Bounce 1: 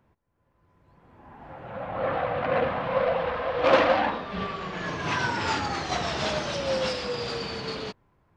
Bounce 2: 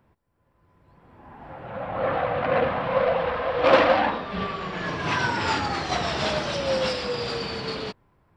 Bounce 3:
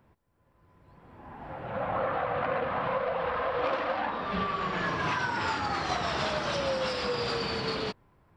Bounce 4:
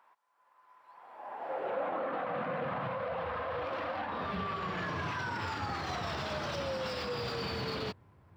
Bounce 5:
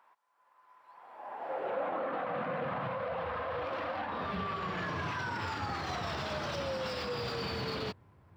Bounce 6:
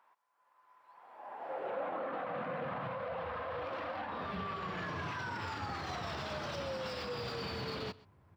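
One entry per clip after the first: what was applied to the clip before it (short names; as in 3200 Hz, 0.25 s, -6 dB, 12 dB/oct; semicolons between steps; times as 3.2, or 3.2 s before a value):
notch 6400 Hz, Q 7.9; gain +2.5 dB
dynamic EQ 1200 Hz, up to +5 dB, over -37 dBFS, Q 1.3; compressor 16:1, threshold -26 dBFS, peak gain reduction 17.5 dB
median filter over 3 samples; limiter -28.5 dBFS, peak gain reduction 11.5 dB; high-pass sweep 970 Hz -> 86 Hz, 0.88–3.14
nothing audible
echo 0.128 s -21 dB; gain -3.5 dB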